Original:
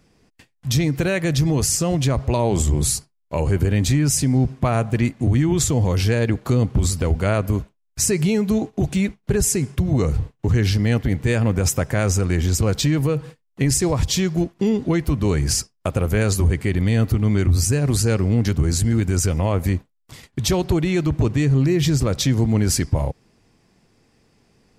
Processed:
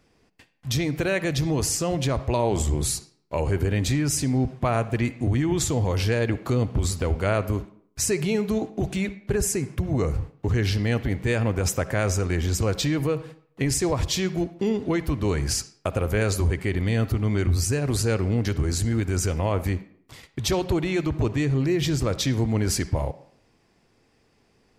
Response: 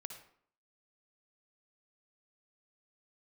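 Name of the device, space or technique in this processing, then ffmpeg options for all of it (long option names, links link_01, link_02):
filtered reverb send: -filter_complex "[0:a]asplit=2[link_01][link_02];[link_02]highpass=frequency=160:width=0.5412,highpass=frequency=160:width=1.3066,lowpass=5400[link_03];[1:a]atrim=start_sample=2205[link_04];[link_03][link_04]afir=irnorm=-1:irlink=0,volume=-2.5dB[link_05];[link_01][link_05]amix=inputs=2:normalize=0,asettb=1/sr,asplit=3[link_06][link_07][link_08];[link_06]atrim=end=9.334[link_09];[link_07]atrim=start=9.33:end=10.37,asetpts=PTS-STARTPTS,afade=type=in:duration=0.004:curve=qsin,afade=type=out:start_time=1.036:duration=0.004:curve=qsin,equalizer=frequency=3600:width=1.8:gain=-5[link_10];[link_08]atrim=start=10.366[link_11];[link_09][link_10]acrossfade=duration=0.004:curve1=hsin:curve2=qsin[link_12];[link_12][link_11]acrossfade=duration=0.004:curve1=qsin:curve2=hsin,volume=-5dB"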